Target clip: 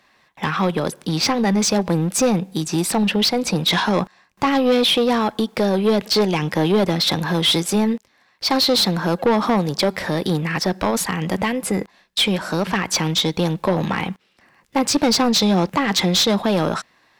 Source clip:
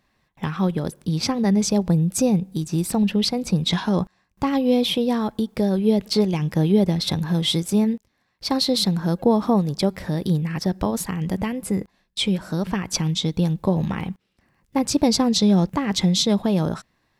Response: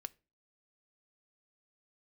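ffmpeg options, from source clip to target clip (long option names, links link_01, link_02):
-filter_complex "[0:a]acrossover=split=210[link_01][link_02];[link_01]aeval=exprs='clip(val(0),-1,0.0473)':channel_layout=same[link_03];[link_03][link_02]amix=inputs=2:normalize=0,asplit=2[link_04][link_05];[link_05]highpass=frequency=720:poles=1,volume=21dB,asoftclip=type=tanh:threshold=-5.5dB[link_06];[link_04][link_06]amix=inputs=2:normalize=0,lowpass=frequency=5300:poles=1,volume=-6dB,volume=-2dB"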